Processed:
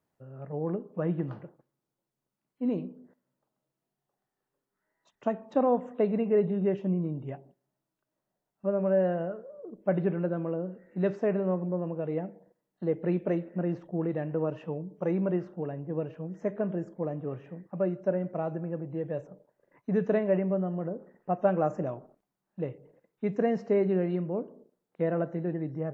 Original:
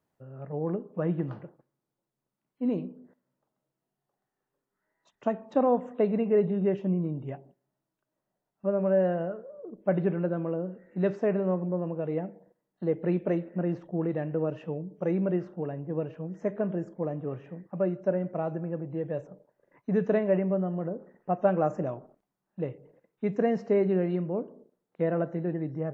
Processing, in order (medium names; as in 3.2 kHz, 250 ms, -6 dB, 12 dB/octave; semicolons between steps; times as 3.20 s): 14.29–15.41 s: peaking EQ 1 kHz +5 dB 0.53 oct; trim -1 dB